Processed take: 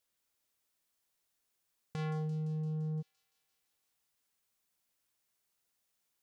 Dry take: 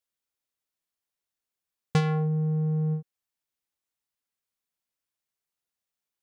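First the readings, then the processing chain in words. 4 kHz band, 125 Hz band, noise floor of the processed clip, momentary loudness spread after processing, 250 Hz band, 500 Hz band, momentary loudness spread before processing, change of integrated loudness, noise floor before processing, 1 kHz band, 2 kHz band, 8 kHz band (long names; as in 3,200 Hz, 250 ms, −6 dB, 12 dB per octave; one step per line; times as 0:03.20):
below −10 dB, −10.5 dB, −82 dBFS, 8 LU, below −10 dB, −11.5 dB, 4 LU, −10.5 dB, below −85 dBFS, −12.0 dB, −13.0 dB, can't be measured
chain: compressor whose output falls as the input rises −31 dBFS, ratio −1
brickwall limiter −33.5 dBFS, peak gain reduction 10 dB
on a send: delay with a high-pass on its return 171 ms, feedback 74%, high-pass 5,300 Hz, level −4.5 dB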